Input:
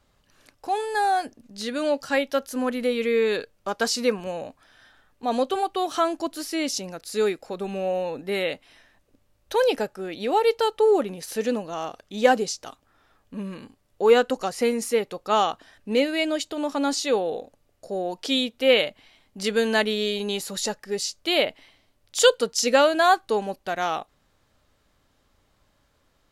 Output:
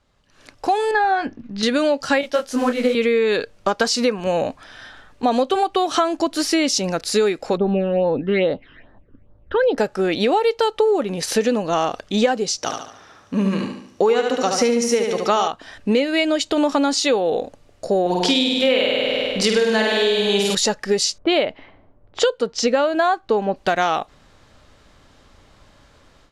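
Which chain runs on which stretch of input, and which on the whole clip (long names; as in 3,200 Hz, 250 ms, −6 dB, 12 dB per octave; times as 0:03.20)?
0:00.91–0:01.63: low-pass filter 2,400 Hz + parametric band 600 Hz −9 dB 0.93 octaves + double-tracking delay 21 ms −12 dB
0:02.21–0:02.95: high-shelf EQ 9,300 Hz −5 dB + noise that follows the level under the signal 22 dB + micro pitch shift up and down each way 42 cents
0:07.57–0:09.78: low-pass that shuts in the quiet parts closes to 1,900 Hz, open at −20 dBFS + high-frequency loss of the air 380 metres + all-pass phaser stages 12, 2.4 Hz, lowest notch 700–2,500 Hz
0:12.58–0:15.48: high-pass filter 91 Hz + parametric band 5,800 Hz +12.5 dB 0.21 octaves + repeating echo 72 ms, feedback 47%, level −5.5 dB
0:18.01–0:20.55: parametric band 1,000 Hz +4 dB 0.23 octaves + flutter between parallel walls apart 8.6 metres, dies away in 1.3 s
0:21.18–0:23.56: low-pass that shuts in the quiet parts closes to 900 Hz, open at −17 dBFS + high-shelf EQ 2,400 Hz −9.5 dB
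whole clip: downward compressor 10 to 1, threshold −29 dBFS; low-pass filter 7,600 Hz 12 dB per octave; automatic gain control gain up to 14.5 dB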